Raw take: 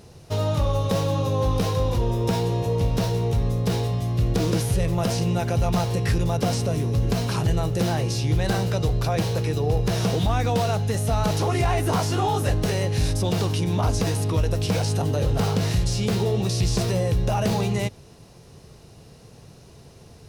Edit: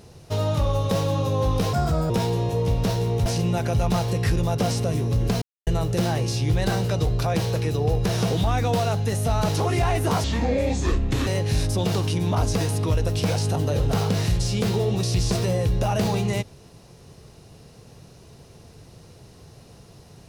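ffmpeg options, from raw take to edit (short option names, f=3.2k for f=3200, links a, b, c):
-filter_complex "[0:a]asplit=8[a][b][c][d][e][f][g][h];[a]atrim=end=1.734[i];[b]atrim=start=1.73:end=2.23,asetpts=PTS-STARTPTS,asetrate=59976,aresample=44100,atrim=end_sample=16213,asetpts=PTS-STARTPTS[j];[c]atrim=start=2.226:end=3.392[k];[d]atrim=start=5.078:end=7.24,asetpts=PTS-STARTPTS,afade=t=out:st=2.158:d=0.004:c=hsin[l];[e]atrim=start=7.24:end=7.49,asetpts=PTS-STARTPTS,volume=0[m];[f]atrim=start=7.49:end=12.064,asetpts=PTS-STARTPTS,afade=t=in:d=0.004:c=hsin[n];[g]atrim=start=12.06:end=12.73,asetpts=PTS-STARTPTS,asetrate=28665,aresample=44100[o];[h]atrim=start=12.726[p];[i][j]acrossfade=d=0.004:c1=hsin:c2=hsin[q];[q][k]acrossfade=d=0.004:c1=hsin:c2=hsin[r];[l][m][n]concat=n=3:v=0:a=1[s];[r][s]acrossfade=d=0.004:c1=hsin:c2=hsin[t];[t][o]acrossfade=d=0.004:c1=hsin:c2=hsin[u];[u][p]acrossfade=d=0.004:c1=hsin:c2=hsin"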